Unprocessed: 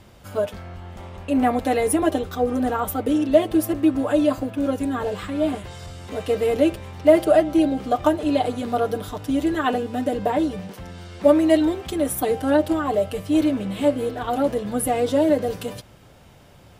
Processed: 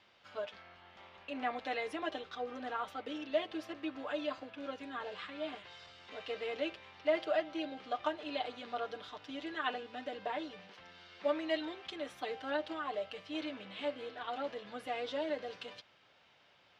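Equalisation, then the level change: band-pass 4200 Hz, Q 0.72; air absorption 230 m; -2.0 dB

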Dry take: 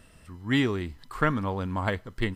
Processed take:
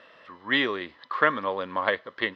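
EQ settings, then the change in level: dynamic EQ 900 Hz, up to -6 dB, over -41 dBFS, Q 0.74; air absorption 71 m; speaker cabinet 430–4700 Hz, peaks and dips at 550 Hz +10 dB, 1100 Hz +9 dB, 1800 Hz +7 dB, 3500 Hz +6 dB; +4.0 dB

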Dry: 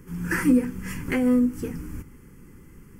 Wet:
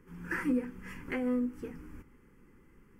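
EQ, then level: tone controls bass -12 dB, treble -12 dB; low shelf 72 Hz +9 dB; bell 220 Hz +3 dB 0.37 oct; -7.5 dB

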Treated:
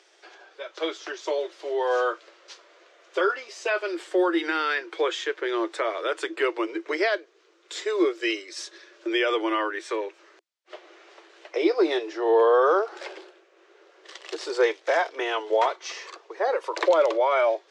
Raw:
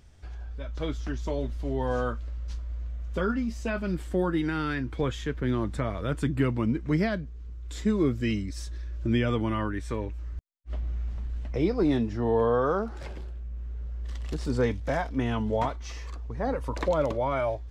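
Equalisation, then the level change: Chebyshev high-pass 330 Hz, order 8; air absorption 110 m; high shelf 2900 Hz +10.5 dB; +6.5 dB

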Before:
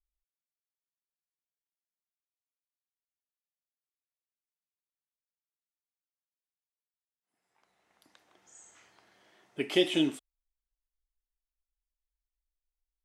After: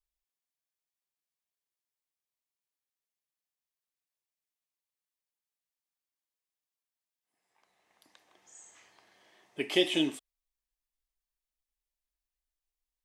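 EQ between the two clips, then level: low shelf 360 Hz -6 dB; notch 1400 Hz, Q 7.6; +1.5 dB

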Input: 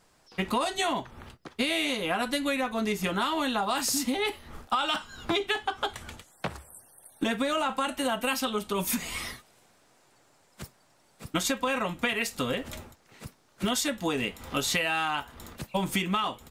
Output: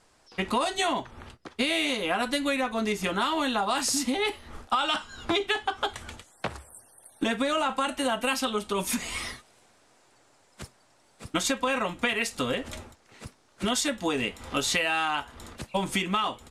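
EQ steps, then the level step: LPF 11000 Hz 24 dB/oct; bell 160 Hz -6 dB 0.46 oct; +1.5 dB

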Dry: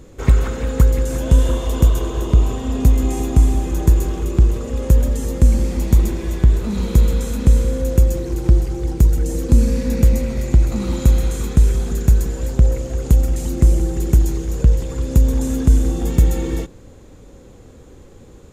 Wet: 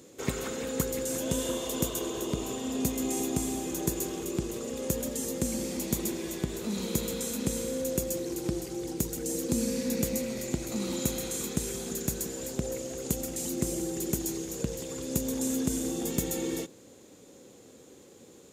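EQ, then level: HPF 190 Hz 12 dB/oct; low shelf 280 Hz -12 dB; bell 1200 Hz -11 dB 2.6 oct; +2.0 dB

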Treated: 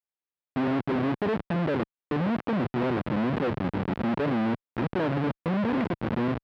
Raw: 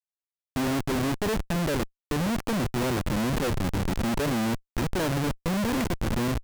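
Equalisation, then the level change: HPF 140 Hz 12 dB/oct; air absorption 390 m; high shelf 9400 Hz -6.5 dB; +2.0 dB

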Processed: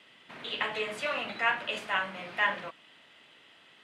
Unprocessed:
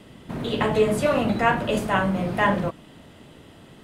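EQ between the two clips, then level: band-pass 2500 Hz, Q 1.2; 0.0 dB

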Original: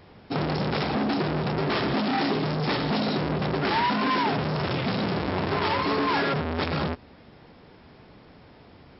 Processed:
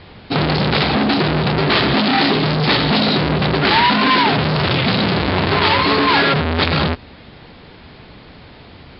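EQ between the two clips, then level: steep low-pass 4700 Hz 72 dB/oct; low shelf 110 Hz +7 dB; high shelf 2100 Hz +11 dB; +7.5 dB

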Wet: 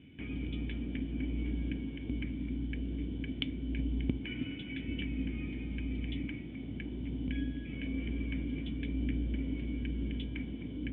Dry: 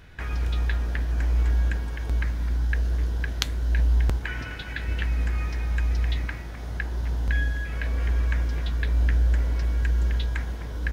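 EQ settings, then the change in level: vocal tract filter i; HPF 110 Hz 12 dB/oct; +9.0 dB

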